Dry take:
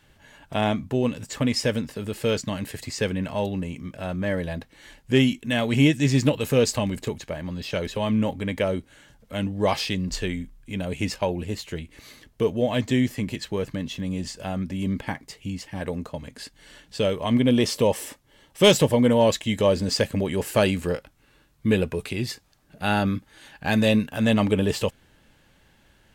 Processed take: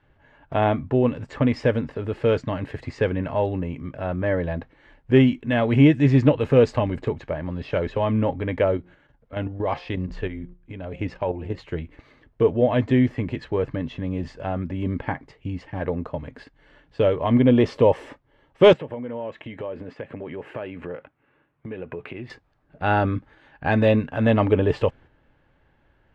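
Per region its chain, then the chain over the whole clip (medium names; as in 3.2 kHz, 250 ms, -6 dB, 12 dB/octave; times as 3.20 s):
8.77–11.58 s: low-pass 8.4 kHz + de-hum 177.6 Hz, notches 8 + level held to a coarse grid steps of 9 dB
18.73–22.30 s: compression 8:1, threshold -32 dBFS + high-pass 140 Hz + resonant high shelf 3.6 kHz -9 dB, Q 1.5
whole clip: low-pass 1.7 kHz 12 dB/octave; gate -47 dBFS, range -6 dB; peaking EQ 200 Hz -12 dB 0.23 oct; trim +4.5 dB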